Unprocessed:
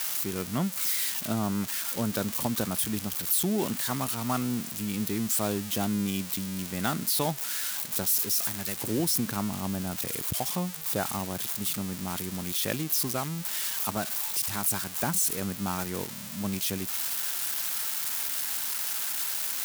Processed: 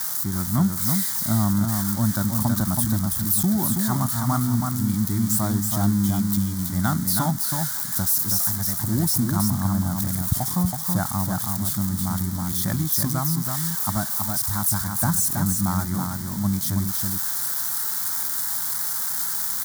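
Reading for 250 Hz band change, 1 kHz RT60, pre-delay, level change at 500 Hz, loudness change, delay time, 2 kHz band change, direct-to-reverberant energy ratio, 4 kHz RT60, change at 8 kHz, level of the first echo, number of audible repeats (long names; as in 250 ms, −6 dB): +8.0 dB, no reverb audible, no reverb audible, −2.5 dB, +6.0 dB, 325 ms, +1.5 dB, no reverb audible, no reverb audible, +5.0 dB, −4.5 dB, 1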